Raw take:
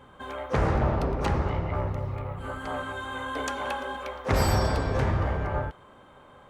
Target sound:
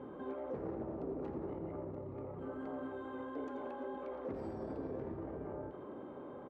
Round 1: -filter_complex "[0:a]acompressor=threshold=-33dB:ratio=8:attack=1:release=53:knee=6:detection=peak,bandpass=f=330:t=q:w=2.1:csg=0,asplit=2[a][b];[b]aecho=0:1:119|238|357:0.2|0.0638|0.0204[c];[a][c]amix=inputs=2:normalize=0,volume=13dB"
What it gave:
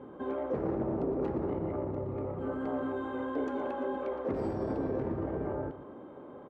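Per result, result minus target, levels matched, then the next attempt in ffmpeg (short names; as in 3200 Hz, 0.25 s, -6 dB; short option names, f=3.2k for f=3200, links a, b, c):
compressor: peak gain reduction -9 dB; echo 34 ms late
-filter_complex "[0:a]acompressor=threshold=-43.5dB:ratio=8:attack=1:release=53:knee=6:detection=peak,bandpass=f=330:t=q:w=2.1:csg=0,asplit=2[a][b];[b]aecho=0:1:119|238|357:0.2|0.0638|0.0204[c];[a][c]amix=inputs=2:normalize=0,volume=13dB"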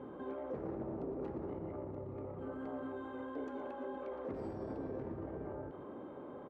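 echo 34 ms late
-filter_complex "[0:a]acompressor=threshold=-43.5dB:ratio=8:attack=1:release=53:knee=6:detection=peak,bandpass=f=330:t=q:w=2.1:csg=0,asplit=2[a][b];[b]aecho=0:1:85|170|255:0.2|0.0638|0.0204[c];[a][c]amix=inputs=2:normalize=0,volume=13dB"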